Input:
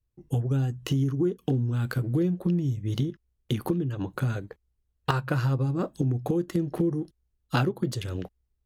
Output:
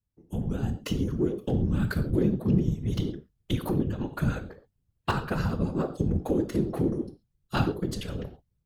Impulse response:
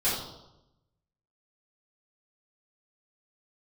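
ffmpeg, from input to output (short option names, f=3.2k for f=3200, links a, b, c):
-filter_complex "[0:a]asplit=2[a][b];[1:a]atrim=start_sample=2205,atrim=end_sample=6174[c];[b][c]afir=irnorm=-1:irlink=0,volume=-16.5dB[d];[a][d]amix=inputs=2:normalize=0,dynaudnorm=f=330:g=3:m=6.5dB,afftfilt=real='hypot(re,im)*cos(2*PI*random(0))':imag='hypot(re,im)*sin(2*PI*random(1))':win_size=512:overlap=0.75,volume=-2dB"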